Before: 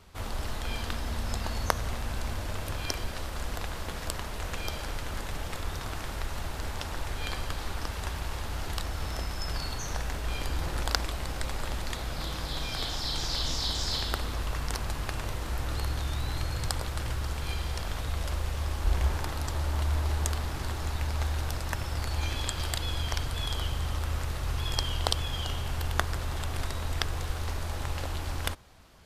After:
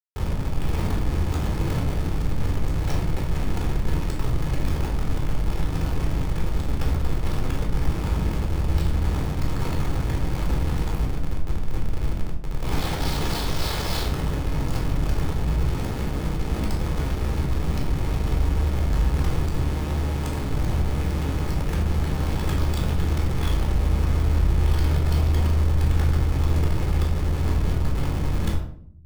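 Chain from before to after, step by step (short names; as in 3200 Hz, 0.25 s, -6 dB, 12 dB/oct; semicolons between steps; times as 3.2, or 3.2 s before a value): 10.89–12.62 inverse Chebyshev band-stop 630–3100 Hz, stop band 80 dB; Schmitt trigger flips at -32.5 dBFS; shoebox room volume 920 m³, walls furnished, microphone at 4.1 m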